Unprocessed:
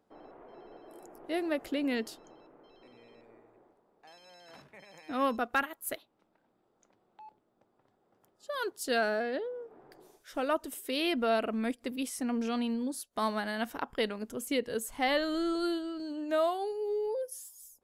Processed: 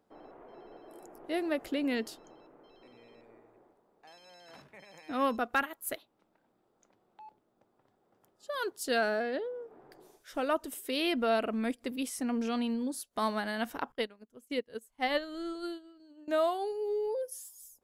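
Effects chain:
0:13.92–0:16.28: expander for the loud parts 2.5 to 1, over −45 dBFS

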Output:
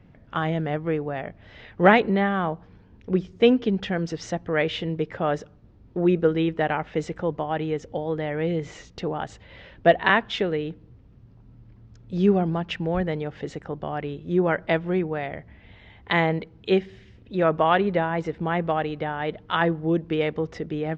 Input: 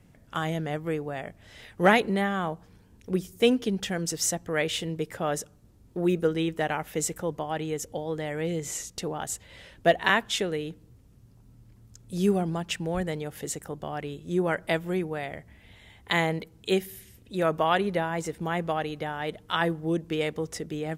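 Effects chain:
Gaussian smoothing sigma 2.3 samples
level +4.5 dB

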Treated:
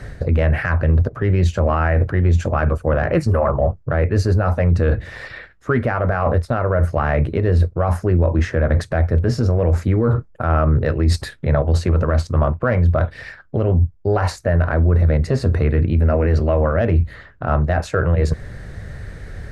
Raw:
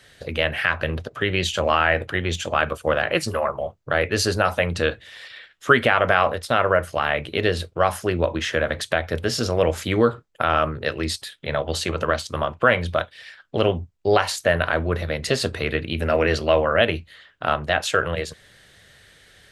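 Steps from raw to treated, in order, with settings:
in parallel at −3 dB: speech leveller 2 s
on the sum: RIAA equalisation playback
reversed playback
downward compressor 4 to 1, threshold −22 dBFS, peak gain reduction 16.5 dB
reversed playback
soft clipping −9 dBFS, distortion −29 dB
parametric band 3,200 Hz −14 dB 0.65 octaves
boost into a limiter +15.5 dB
level −7 dB

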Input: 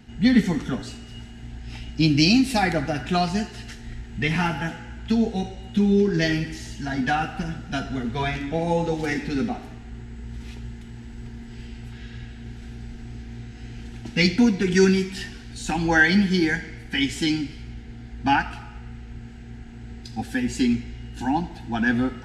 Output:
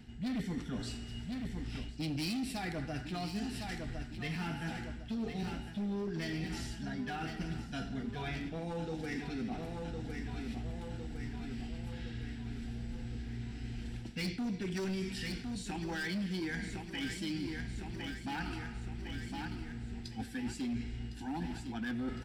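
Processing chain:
hard clipping −18 dBFS, distortion −11 dB
notch filter 6,500 Hz, Q 8
repeating echo 1,058 ms, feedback 52%, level −11.5 dB
reversed playback
downward compressor 5 to 1, threshold −32 dBFS, peak gain reduction 12 dB
reversed playback
parametric band 930 Hz −4.5 dB 2.2 octaves
level −3 dB

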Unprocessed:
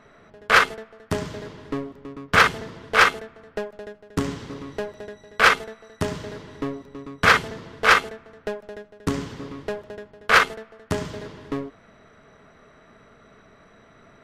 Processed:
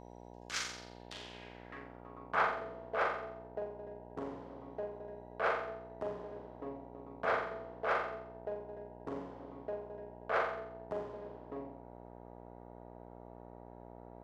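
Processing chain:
flutter between parallel walls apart 7.5 metres, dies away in 0.65 s
band-pass filter sweep 6,300 Hz → 640 Hz, 0:00.68–0:02.61
hum with harmonics 60 Hz, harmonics 16, −45 dBFS −1 dB per octave
level −7.5 dB

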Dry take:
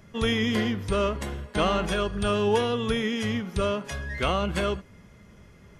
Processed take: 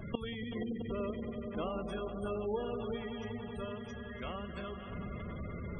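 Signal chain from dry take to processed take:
gate with flip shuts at −30 dBFS, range −25 dB
echo that builds up and dies away 95 ms, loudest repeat 5, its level −11.5 dB
0:00.53–0:02.96: dynamic equaliser 340 Hz, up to +5 dB, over −58 dBFS, Q 0.73
gate on every frequency bin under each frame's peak −20 dB strong
level +8.5 dB

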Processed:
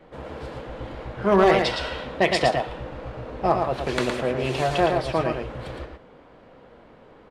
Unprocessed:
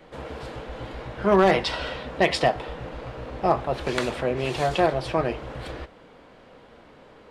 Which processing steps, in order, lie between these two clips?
on a send: single-tap delay 113 ms −5 dB
on the sum: one half of a high-frequency compander decoder only

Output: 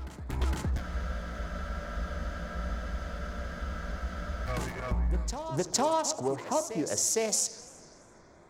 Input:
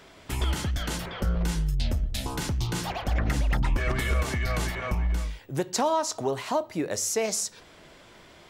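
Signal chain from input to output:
adaptive Wiener filter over 15 samples
dynamic equaliser 6,800 Hz, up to +5 dB, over −44 dBFS, Q 0.75
backwards echo 460 ms −11 dB
frozen spectrum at 0:00.83, 3.65 s
feedback echo with a swinging delay time 84 ms, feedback 74%, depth 215 cents, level −20 dB
level −2.5 dB

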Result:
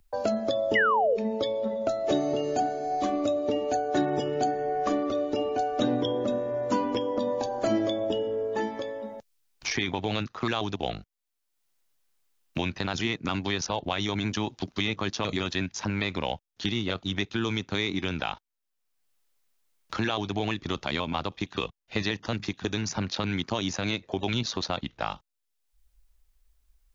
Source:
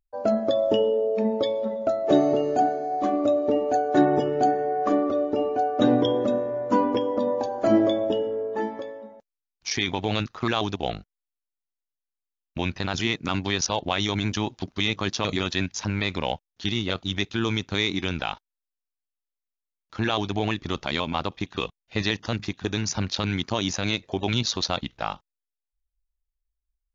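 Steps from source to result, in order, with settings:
sound drawn into the spectrogram fall, 0:00.75–0:01.17, 420–2,100 Hz −15 dBFS
multiband upward and downward compressor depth 70%
level −4 dB

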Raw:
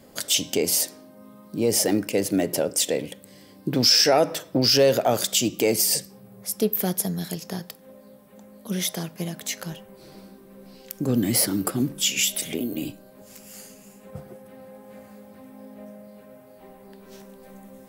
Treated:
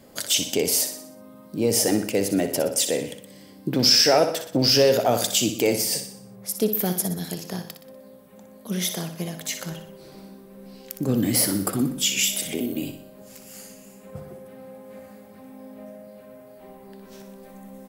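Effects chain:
0:05.75–0:06.49: high-shelf EQ 6,100 Hz −6 dB
repeating echo 61 ms, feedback 49%, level −9 dB

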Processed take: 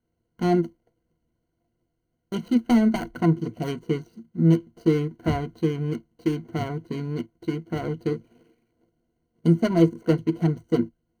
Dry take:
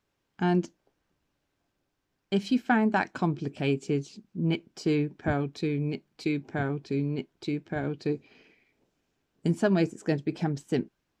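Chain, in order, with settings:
running median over 41 samples
EQ curve with evenly spaced ripples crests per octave 1.9, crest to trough 15 dB
level +3 dB

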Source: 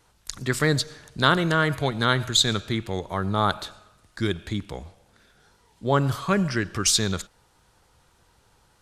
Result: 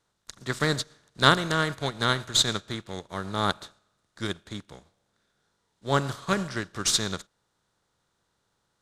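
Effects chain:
compressor on every frequency bin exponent 0.6
expander for the loud parts 2.5 to 1, over −36 dBFS

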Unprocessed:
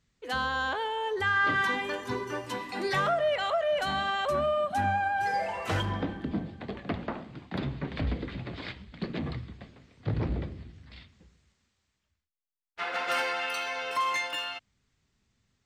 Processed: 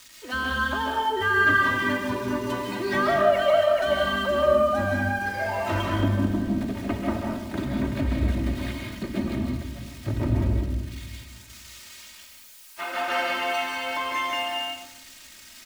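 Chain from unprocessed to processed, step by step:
spike at every zero crossing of −31 dBFS
low-pass filter 2,600 Hz 6 dB per octave
parametric band 150 Hz +7.5 dB 0.8 octaves
comb filter 3.2 ms, depth 86%
convolution reverb RT60 0.90 s, pre-delay 134 ms, DRR 0 dB

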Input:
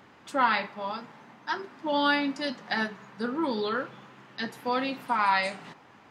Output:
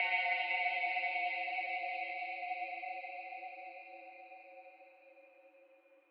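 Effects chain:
noise reduction from a noise print of the clip's start 29 dB
extreme stretch with random phases 31×, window 0.25 s, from 0:05.45
single-sideband voice off tune +140 Hz 330–3,000 Hz
level −2.5 dB

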